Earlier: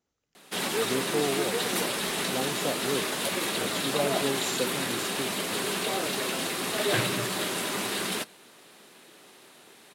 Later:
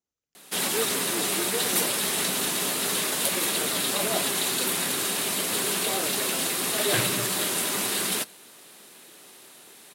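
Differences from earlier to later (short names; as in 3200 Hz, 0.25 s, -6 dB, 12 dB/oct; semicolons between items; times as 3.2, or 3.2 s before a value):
speech -12.0 dB; master: add high shelf 6300 Hz +11.5 dB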